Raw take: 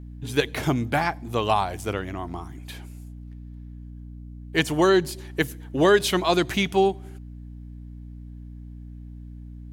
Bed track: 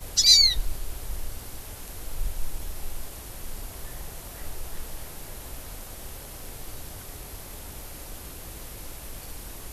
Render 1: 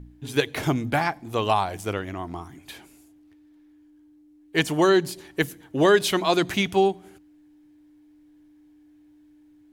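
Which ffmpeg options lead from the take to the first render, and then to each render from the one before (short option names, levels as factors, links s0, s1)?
-af "bandreject=f=60:t=h:w=4,bandreject=f=120:t=h:w=4,bandreject=f=180:t=h:w=4,bandreject=f=240:t=h:w=4"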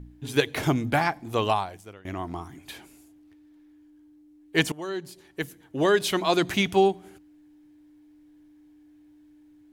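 -filter_complex "[0:a]asplit=3[s0][s1][s2];[s0]atrim=end=2.05,asetpts=PTS-STARTPTS,afade=t=out:st=1.44:d=0.61:c=qua:silence=0.0944061[s3];[s1]atrim=start=2.05:end=4.72,asetpts=PTS-STARTPTS,afade=t=in:d=0.004:c=hsin:silence=0.0944061,afade=t=out:st=2.666:d=0.004:c=hsin:silence=0.105925[s4];[s2]atrim=start=4.72,asetpts=PTS-STARTPTS,afade=t=in:d=1.93:silence=0.105925[s5];[s3][s4][s5]concat=n=3:v=0:a=1"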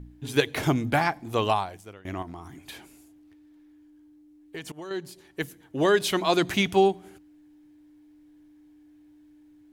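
-filter_complex "[0:a]asettb=1/sr,asplit=3[s0][s1][s2];[s0]atrim=end=2.224[s3];[s1]atrim=start=2.22:end=4.91,asetpts=PTS-STARTPTS,afade=t=in:d=0.004:c=qsin,afade=t=out:st=2.686:d=0.004:c=qsin,acompressor=threshold=0.0178:ratio=6:attack=3.2:release=140:knee=1:detection=peak[s4];[s2]atrim=start=4.906[s5];[s3][s4]acrossfade=d=0.004:c1=hsin:c2=qsin[s6];[s6][s5]acrossfade=d=0.004:c1=qsin:c2=hsin"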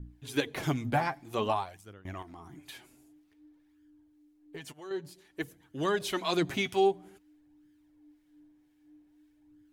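-filter_complex "[0:a]acrossover=split=1200[s0][s1];[s0]aeval=exprs='val(0)*(1-0.5/2+0.5/2*cos(2*PI*2*n/s))':c=same[s2];[s1]aeval=exprs='val(0)*(1-0.5/2-0.5/2*cos(2*PI*2*n/s))':c=same[s3];[s2][s3]amix=inputs=2:normalize=0,flanger=delay=0.6:depth=7.5:regen=31:speed=0.52:shape=sinusoidal"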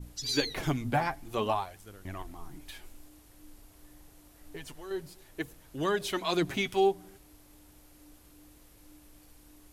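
-filter_complex "[1:a]volume=0.126[s0];[0:a][s0]amix=inputs=2:normalize=0"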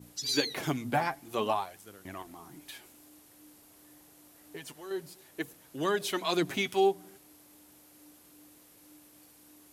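-af "highpass=160,highshelf=f=7700:g=4.5"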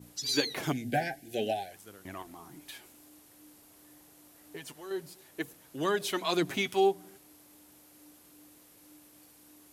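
-filter_complex "[0:a]asettb=1/sr,asplit=3[s0][s1][s2];[s0]atrim=end=0.724[s3];[s1]atrim=start=0.72:end=1.72,asetpts=PTS-STARTPTS,afade=t=in:d=0.004:c=qsin,afade=t=out:st=0.996:d=0.004:c=qsin,asuperstop=centerf=1100:order=20:qfactor=1.6[s4];[s2]atrim=start=1.716[s5];[s3][s4]acrossfade=d=0.004:c1=hsin:c2=qsin[s6];[s6][s5]acrossfade=d=0.004:c1=qsin:c2=hsin"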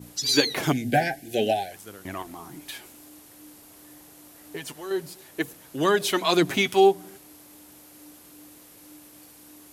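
-af "volume=2.51"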